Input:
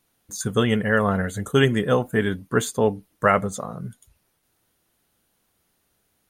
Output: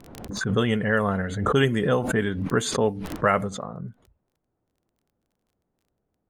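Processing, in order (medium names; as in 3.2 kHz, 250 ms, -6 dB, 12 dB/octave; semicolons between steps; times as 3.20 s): level-controlled noise filter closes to 700 Hz, open at -14.5 dBFS; crackle 19 per s -52 dBFS; swell ahead of each attack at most 53 dB/s; trim -3 dB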